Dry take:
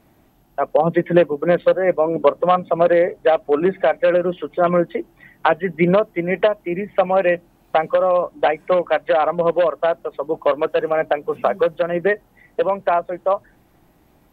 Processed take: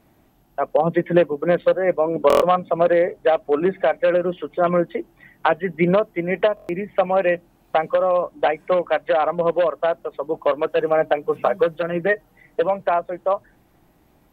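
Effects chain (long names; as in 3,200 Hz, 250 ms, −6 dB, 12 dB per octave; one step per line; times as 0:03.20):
0:10.73–0:12.83: comb filter 6.5 ms, depth 51%
buffer that repeats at 0:02.28/0:06.55, samples 1,024, times 5
level −2 dB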